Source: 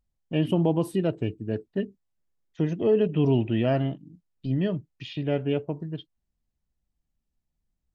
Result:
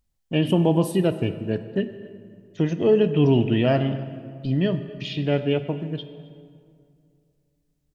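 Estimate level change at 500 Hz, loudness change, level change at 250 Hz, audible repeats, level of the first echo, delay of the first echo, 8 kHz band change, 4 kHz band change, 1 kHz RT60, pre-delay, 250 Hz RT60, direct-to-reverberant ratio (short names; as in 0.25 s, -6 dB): +4.0 dB, +3.5 dB, +4.0 dB, 1, -22.5 dB, 0.266 s, n/a, +7.5 dB, 2.2 s, 15 ms, 2.6 s, 10.5 dB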